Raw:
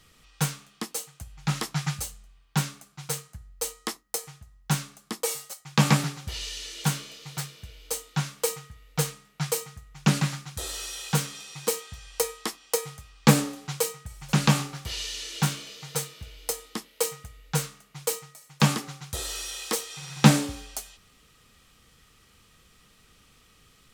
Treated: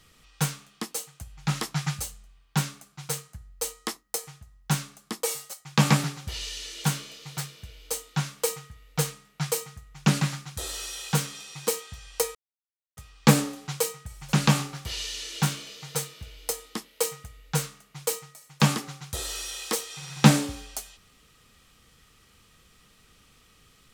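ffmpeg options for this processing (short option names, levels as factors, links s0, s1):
-filter_complex "[0:a]asplit=3[s0][s1][s2];[s0]atrim=end=12.35,asetpts=PTS-STARTPTS,afade=t=out:st=12.346:d=0.004:c=hsin[s3];[s1]atrim=start=12.35:end=12.97,asetpts=PTS-STARTPTS,volume=0[s4];[s2]atrim=start=12.97,asetpts=PTS-STARTPTS,afade=t=in:d=0.004:c=hsin[s5];[s3][s4][s5]concat=n=3:v=0:a=1"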